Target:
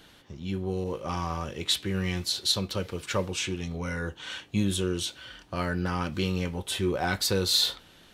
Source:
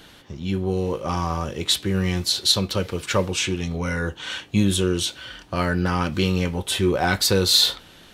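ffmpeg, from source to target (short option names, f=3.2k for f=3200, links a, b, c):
-filter_complex "[0:a]asettb=1/sr,asplit=3[a][b][c];[a]atrim=end=0.844[d];[b]atrim=start=0.84:end=2.26,asetpts=PTS-STARTPTS,afade=t=in:d=0.004:c=qsin,afade=t=out:st=1.416:d=0.004:c=qsin,adynamicequalizer=threshold=0.0158:dfrequency=2400:dqfactor=0.99:tfrequency=2400:tqfactor=0.99:attack=5:release=100:ratio=0.375:range=2:mode=boostabove:tftype=bell[e];[c]atrim=start=2.256[f];[d][e]acrossfade=d=0.004:c1=hsin:c2=qsin[g];[g][f]acrossfade=d=0.004:c1=qsin:c2=hsin,volume=-7dB"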